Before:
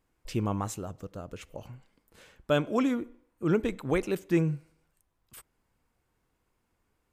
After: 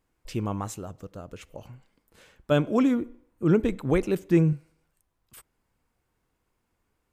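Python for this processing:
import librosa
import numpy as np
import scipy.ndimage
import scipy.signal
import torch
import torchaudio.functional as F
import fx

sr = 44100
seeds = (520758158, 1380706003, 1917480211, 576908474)

y = fx.low_shelf(x, sr, hz=450.0, db=7.0, at=(2.51, 4.53))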